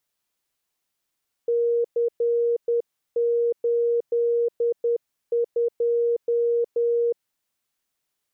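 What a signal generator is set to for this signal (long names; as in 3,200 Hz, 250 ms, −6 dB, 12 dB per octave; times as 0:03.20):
Morse code "C82" 10 words per minute 471 Hz −18.5 dBFS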